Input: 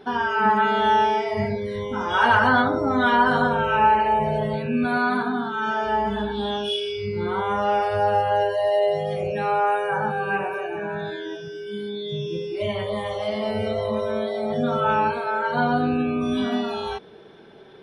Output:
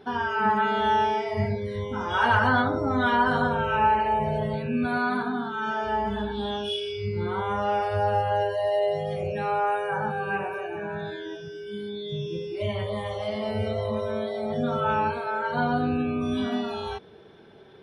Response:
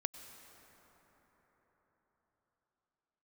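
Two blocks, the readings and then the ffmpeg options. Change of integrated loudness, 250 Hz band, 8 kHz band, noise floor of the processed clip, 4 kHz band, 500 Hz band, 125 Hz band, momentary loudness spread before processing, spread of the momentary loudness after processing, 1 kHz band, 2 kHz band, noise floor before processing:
−3.5 dB, −3.0 dB, can't be measured, −46 dBFS, −4.0 dB, −4.0 dB, +0.5 dB, 11 LU, 11 LU, −4.0 dB, −4.0 dB, −42 dBFS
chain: -af "equalizer=frequency=87:width=1.5:gain=8.5,volume=-4dB"

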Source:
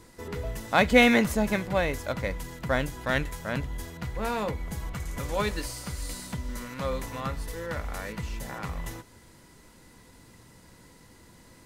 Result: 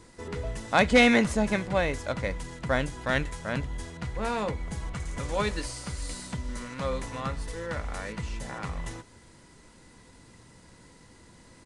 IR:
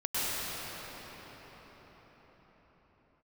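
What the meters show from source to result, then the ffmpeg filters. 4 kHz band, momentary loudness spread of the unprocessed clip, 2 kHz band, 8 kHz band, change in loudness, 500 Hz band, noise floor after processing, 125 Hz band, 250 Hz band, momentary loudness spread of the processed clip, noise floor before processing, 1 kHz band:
0.0 dB, 15 LU, −0.5 dB, 0.0 dB, 0.0 dB, −0.5 dB, −55 dBFS, 0.0 dB, 0.0 dB, 14 LU, −54 dBFS, 0.0 dB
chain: -af "aeval=exprs='0.316*(abs(mod(val(0)/0.316+3,4)-2)-1)':channel_layout=same,aresample=22050,aresample=44100"

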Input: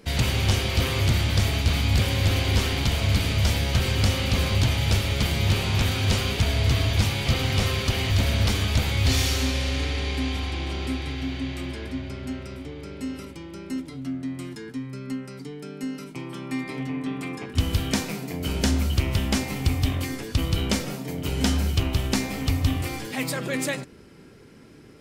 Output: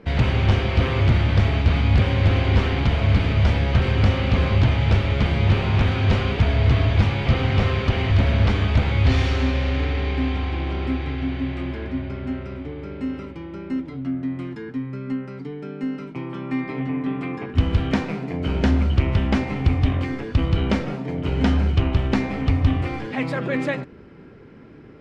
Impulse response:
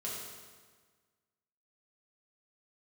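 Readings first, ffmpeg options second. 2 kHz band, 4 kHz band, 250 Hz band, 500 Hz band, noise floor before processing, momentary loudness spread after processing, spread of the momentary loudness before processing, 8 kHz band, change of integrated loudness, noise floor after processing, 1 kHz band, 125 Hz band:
+1.5 dB, −5.0 dB, +4.5 dB, +4.5 dB, −46 dBFS, 11 LU, 12 LU, below −15 dB, +3.5 dB, −42 dBFS, +4.5 dB, +4.5 dB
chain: -af "lowpass=2100,volume=4.5dB"

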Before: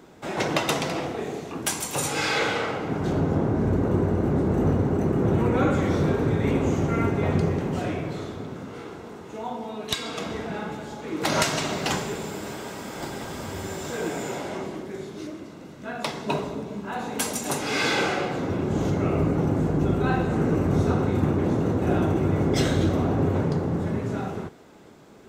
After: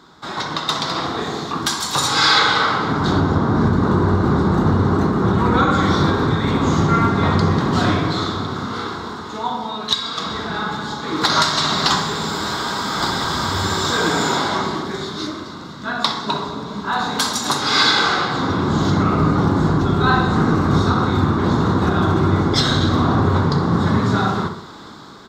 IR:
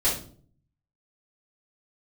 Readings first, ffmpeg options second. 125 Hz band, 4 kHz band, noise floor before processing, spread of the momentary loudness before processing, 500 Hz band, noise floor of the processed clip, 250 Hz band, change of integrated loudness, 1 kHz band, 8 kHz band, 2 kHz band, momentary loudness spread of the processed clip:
+6.5 dB, +13.5 dB, −42 dBFS, 12 LU, +3.0 dB, −33 dBFS, +6.0 dB, +7.5 dB, +11.5 dB, +5.0 dB, +9.5 dB, 10 LU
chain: -filter_complex "[0:a]alimiter=limit=-17dB:level=0:latency=1:release=496,firequalizer=gain_entry='entry(220,0);entry(560,-6);entry(1100,11);entry(2600,-5);entry(3700,14);entry(9100,-5)':delay=0.05:min_phase=1,asplit=2[link_01][link_02];[link_02]adelay=63,lowpass=frequency=2000:poles=1,volume=-7.5dB,asplit=2[link_03][link_04];[link_04]adelay=63,lowpass=frequency=2000:poles=1,volume=0.54,asplit=2[link_05][link_06];[link_06]adelay=63,lowpass=frequency=2000:poles=1,volume=0.54,asplit=2[link_07][link_08];[link_08]adelay=63,lowpass=frequency=2000:poles=1,volume=0.54,asplit=2[link_09][link_10];[link_10]adelay=63,lowpass=frequency=2000:poles=1,volume=0.54,asplit=2[link_11][link_12];[link_12]adelay=63,lowpass=frequency=2000:poles=1,volume=0.54,asplit=2[link_13][link_14];[link_14]adelay=63,lowpass=frequency=2000:poles=1,volume=0.54[link_15];[link_01][link_03][link_05][link_07][link_09][link_11][link_13][link_15]amix=inputs=8:normalize=0,dynaudnorm=framelen=180:gausssize=9:maxgain=10dB,bandreject=frequency=6000:width=16"

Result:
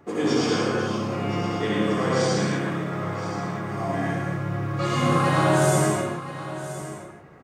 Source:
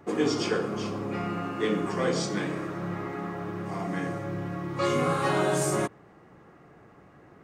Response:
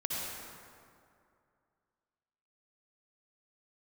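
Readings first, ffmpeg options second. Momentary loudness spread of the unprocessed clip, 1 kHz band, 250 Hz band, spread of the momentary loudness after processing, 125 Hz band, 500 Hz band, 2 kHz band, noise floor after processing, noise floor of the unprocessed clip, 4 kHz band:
9 LU, +6.0 dB, +5.0 dB, 13 LU, +8.5 dB, +4.0 dB, +5.5 dB, −43 dBFS, −54 dBFS, +5.0 dB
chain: -filter_complex "[0:a]aecho=1:1:1022:0.211[link_01];[1:a]atrim=start_sample=2205,afade=type=out:start_time=0.38:duration=0.01,atrim=end_sample=17199[link_02];[link_01][link_02]afir=irnorm=-1:irlink=0,volume=1dB"

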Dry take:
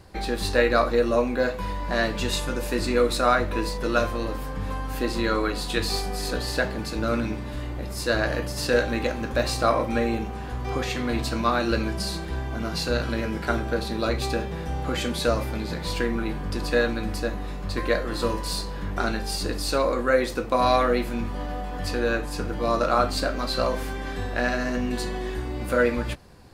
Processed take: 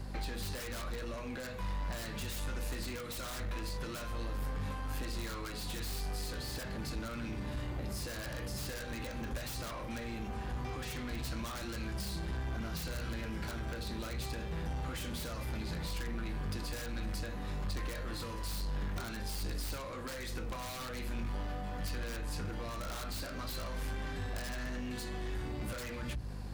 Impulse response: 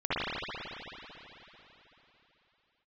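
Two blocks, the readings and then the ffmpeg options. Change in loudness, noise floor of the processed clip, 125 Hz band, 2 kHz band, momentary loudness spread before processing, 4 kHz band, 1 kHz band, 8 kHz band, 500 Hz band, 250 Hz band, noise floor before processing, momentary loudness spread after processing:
−14.0 dB, −42 dBFS, −8.5 dB, −15.0 dB, 9 LU, −12.5 dB, −17.5 dB, −9.0 dB, −20.5 dB, −14.5 dB, −33 dBFS, 2 LU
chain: -filter_complex "[0:a]bandreject=frequency=60:width_type=h:width=6,bandreject=frequency=120:width_type=h:width=6,bandreject=frequency=180:width_type=h:width=6,bandreject=frequency=240:width_type=h:width=6,bandreject=frequency=300:width_type=h:width=6,bandreject=frequency=360:width_type=h:width=6,bandreject=frequency=420:width_type=h:width=6,bandreject=frequency=480:width_type=h:width=6,acrossover=split=1200[link_01][link_02];[link_01]acompressor=threshold=-31dB:ratio=6[link_03];[link_02]aeval=exprs='(mod(18.8*val(0)+1,2)-1)/18.8':channel_layout=same[link_04];[link_03][link_04]amix=inputs=2:normalize=0,aeval=exprs='val(0)+0.00794*(sin(2*PI*50*n/s)+sin(2*PI*2*50*n/s)/2+sin(2*PI*3*50*n/s)/3+sin(2*PI*4*50*n/s)/4+sin(2*PI*5*50*n/s)/5)':channel_layout=same,asoftclip=type=tanh:threshold=-32.5dB,acrossover=split=200[link_05][link_06];[link_06]acompressor=threshold=-45dB:ratio=3[link_07];[link_05][link_07]amix=inputs=2:normalize=0,volume=1.5dB"

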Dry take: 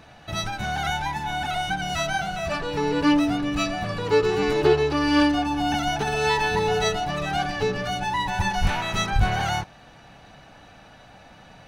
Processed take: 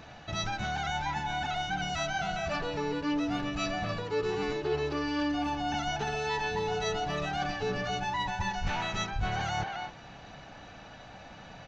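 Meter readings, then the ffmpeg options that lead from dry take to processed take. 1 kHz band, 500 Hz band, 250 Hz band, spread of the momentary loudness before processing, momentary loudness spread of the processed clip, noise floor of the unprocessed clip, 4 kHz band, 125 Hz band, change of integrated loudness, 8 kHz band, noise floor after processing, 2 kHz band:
−7.0 dB, −9.0 dB, −9.5 dB, 8 LU, 17 LU, −49 dBFS, −7.5 dB, −8.0 dB, −8.5 dB, −7.5 dB, −49 dBFS, −7.0 dB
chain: -filter_complex "[0:a]aresample=16000,aresample=44100,asplit=2[link_01][link_02];[link_02]adelay=270,highpass=300,lowpass=3400,asoftclip=type=hard:threshold=-16.5dB,volume=-11dB[link_03];[link_01][link_03]amix=inputs=2:normalize=0,areverse,acompressor=threshold=-30dB:ratio=4,areverse"

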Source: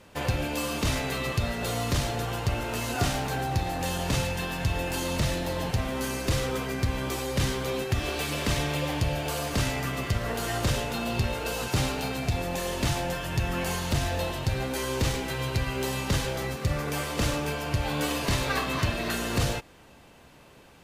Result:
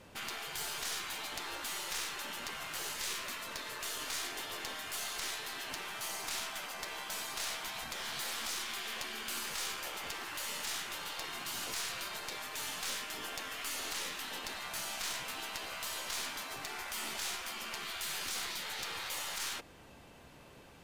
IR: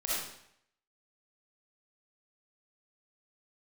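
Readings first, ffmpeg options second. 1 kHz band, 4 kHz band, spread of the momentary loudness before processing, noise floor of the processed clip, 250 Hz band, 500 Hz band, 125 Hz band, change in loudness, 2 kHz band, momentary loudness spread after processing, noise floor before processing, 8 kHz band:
−10.5 dB, −4.5 dB, 2 LU, −56 dBFS, −22.5 dB, −18.5 dB, −31.5 dB, −9.5 dB, −7.0 dB, 4 LU, −53 dBFS, −3.0 dB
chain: -af "afftfilt=real='re*lt(hypot(re,im),0.0501)':imag='im*lt(hypot(re,im),0.0501)':win_size=1024:overlap=0.75,aeval=exprs='(tanh(25.1*val(0)+0.6)-tanh(0.6))/25.1':channel_layout=same"

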